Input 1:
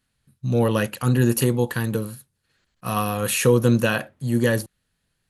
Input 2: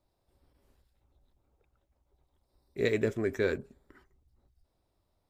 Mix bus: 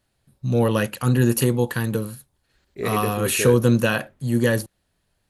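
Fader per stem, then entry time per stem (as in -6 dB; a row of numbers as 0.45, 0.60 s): +0.5, +1.5 dB; 0.00, 0.00 s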